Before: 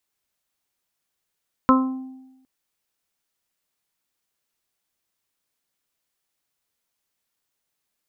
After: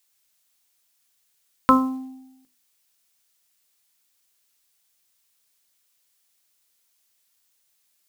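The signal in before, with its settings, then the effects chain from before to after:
additive tone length 0.76 s, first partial 261 Hz, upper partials -7/-19/-0.5/-2.5 dB, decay 1.02 s, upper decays 0.39/0.98/0.41/0.31 s, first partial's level -12.5 dB
high shelf 2200 Hz +12 dB; notches 50/100/150/200/250/300/350/400/450 Hz; short-mantissa float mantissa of 4-bit

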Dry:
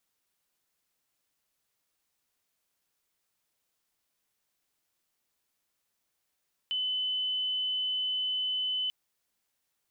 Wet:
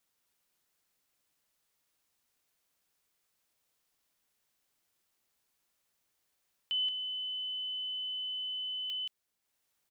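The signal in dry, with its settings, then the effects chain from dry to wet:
tone sine 3020 Hz -28 dBFS 2.19 s
transient shaper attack -1 dB, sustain -5 dB; on a send: echo 0.176 s -5.5 dB

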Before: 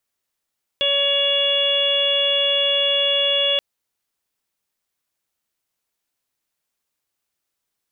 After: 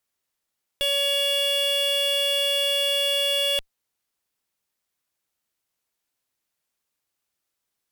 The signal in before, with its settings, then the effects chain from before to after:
steady additive tone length 2.78 s, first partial 564 Hz, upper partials -15/-13/-12/1.5/3.5 dB, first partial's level -22.5 dB
limiter -16.5 dBFS; added harmonics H 5 -19 dB, 6 -16 dB, 7 -20 dB, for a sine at -16.5 dBFS

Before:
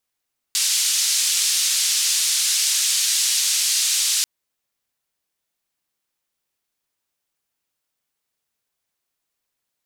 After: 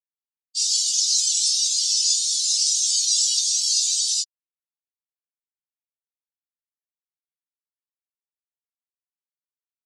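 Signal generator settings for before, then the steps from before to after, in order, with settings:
noise band 4000–7600 Hz, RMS -20 dBFS 3.69 s
spectral expander 4:1

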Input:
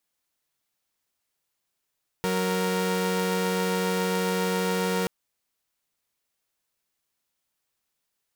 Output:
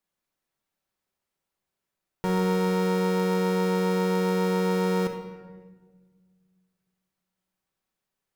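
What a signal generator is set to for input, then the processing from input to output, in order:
chord F#3/A#4 saw, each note -24 dBFS 2.83 s
high shelf 2100 Hz -9.5 dB; shoebox room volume 1400 m³, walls mixed, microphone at 1.1 m

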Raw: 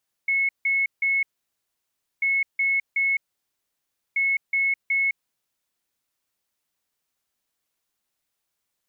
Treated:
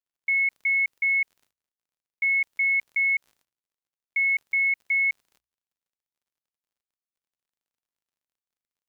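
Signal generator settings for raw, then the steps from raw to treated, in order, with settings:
beep pattern sine 2190 Hz, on 0.21 s, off 0.16 s, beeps 3, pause 0.99 s, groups 3, -19 dBFS
crackle 45/s -45 dBFS; gate -59 dBFS, range -23 dB; notches 60/120 Hz

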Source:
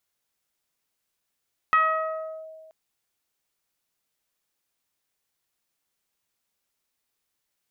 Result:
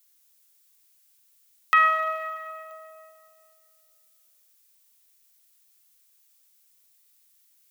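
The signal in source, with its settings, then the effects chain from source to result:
FM tone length 0.98 s, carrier 636 Hz, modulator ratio 1, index 1.9, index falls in 0.73 s linear, decay 1.65 s, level -12 dB
tilt +4.5 dB/oct; Schroeder reverb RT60 2.1 s, combs from 33 ms, DRR 6 dB

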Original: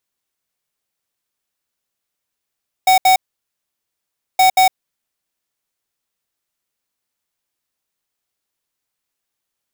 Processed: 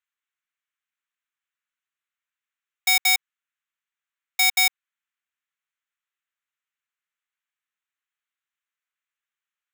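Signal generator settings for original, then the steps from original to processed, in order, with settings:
beep pattern square 750 Hz, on 0.11 s, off 0.07 s, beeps 2, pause 1.23 s, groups 2, -10.5 dBFS
Wiener smoothing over 9 samples; HPF 1300 Hz 24 dB/oct

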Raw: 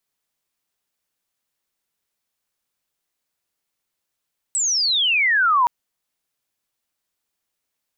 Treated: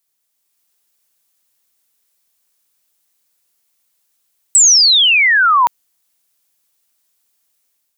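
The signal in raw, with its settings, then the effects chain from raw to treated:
chirp logarithmic 8100 Hz -> 930 Hz -18 dBFS -> -13 dBFS 1.12 s
high shelf 4800 Hz +11 dB; AGC gain up to 5.5 dB; low shelf 92 Hz -8 dB

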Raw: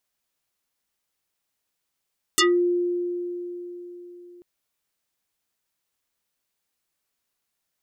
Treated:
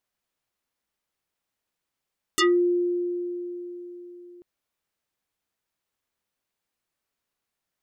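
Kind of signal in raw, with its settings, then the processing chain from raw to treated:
FM tone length 2.04 s, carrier 352 Hz, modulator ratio 4.54, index 7.3, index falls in 0.20 s exponential, decay 4.07 s, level -14.5 dB
high shelf 3400 Hz -7.5 dB

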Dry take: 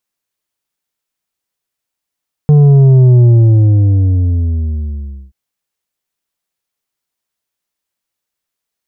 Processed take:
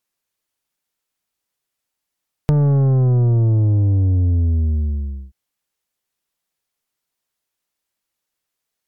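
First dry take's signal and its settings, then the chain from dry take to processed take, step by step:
sub drop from 150 Hz, over 2.83 s, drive 6.5 dB, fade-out 2.09 s, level -4 dB
tracing distortion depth 0.27 ms; compressor 6:1, threshold -14 dBFS; MP3 112 kbps 48000 Hz

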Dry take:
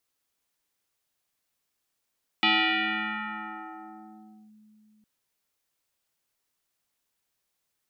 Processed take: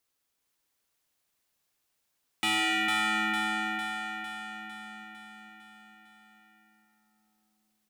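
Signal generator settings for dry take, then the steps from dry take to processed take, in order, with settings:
FM tone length 2.61 s, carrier 214 Hz, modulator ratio 2.51, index 6.2, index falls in 2.08 s linear, decay 3.71 s, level -18 dB
overloaded stage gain 26 dB; on a send: feedback echo 0.453 s, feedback 58%, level -3.5 dB

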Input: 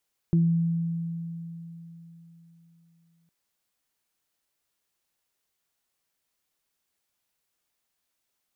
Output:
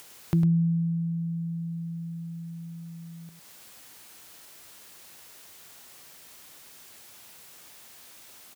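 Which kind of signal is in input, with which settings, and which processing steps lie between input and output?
additive tone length 2.96 s, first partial 167 Hz, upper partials -10 dB, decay 3.72 s, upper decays 0.32 s, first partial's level -17 dB
upward compressor, threshold -27 dBFS; HPF 66 Hz; echo 0.103 s -8 dB

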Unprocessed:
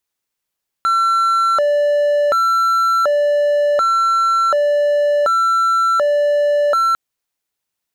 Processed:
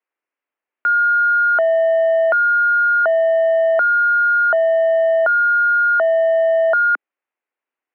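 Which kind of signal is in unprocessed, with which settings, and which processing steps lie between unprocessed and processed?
siren hi-lo 584–1350 Hz 0.68/s triangle -10 dBFS 6.10 s
mistuned SSB +71 Hz 190–2500 Hz

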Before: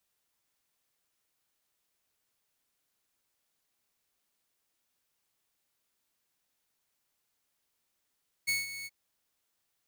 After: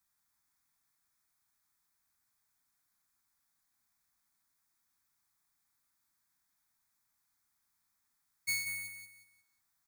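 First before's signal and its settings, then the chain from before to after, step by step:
ADSR saw 2210 Hz, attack 19 ms, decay 0.172 s, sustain -13 dB, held 0.39 s, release 36 ms -23.5 dBFS
bell 2800 Hz +9.5 dB 0.71 oct; fixed phaser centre 1200 Hz, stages 4; feedback echo 0.18 s, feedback 30%, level -7 dB

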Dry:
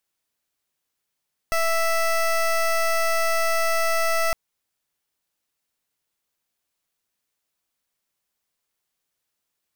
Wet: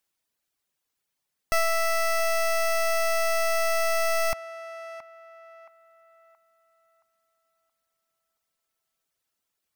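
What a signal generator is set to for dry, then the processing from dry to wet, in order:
pulse 660 Hz, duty 18% -21 dBFS 2.81 s
reverb removal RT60 0.73 s; narrowing echo 0.673 s, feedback 41%, band-pass 1100 Hz, level -12 dB

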